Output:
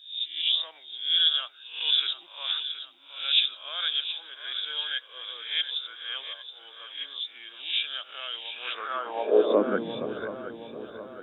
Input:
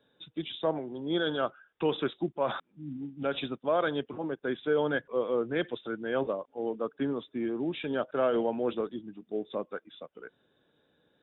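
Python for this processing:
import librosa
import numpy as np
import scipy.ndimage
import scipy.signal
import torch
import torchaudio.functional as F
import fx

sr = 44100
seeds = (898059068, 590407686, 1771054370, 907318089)

p1 = fx.spec_swells(x, sr, rise_s=0.49)
p2 = p1 + fx.echo_feedback(p1, sr, ms=721, feedback_pct=55, wet_db=-11.5, dry=0)
p3 = fx.filter_sweep_highpass(p2, sr, from_hz=3400.0, to_hz=62.0, start_s=8.5, end_s=10.27, q=2.7)
y = F.gain(torch.from_numpy(p3), 7.0).numpy()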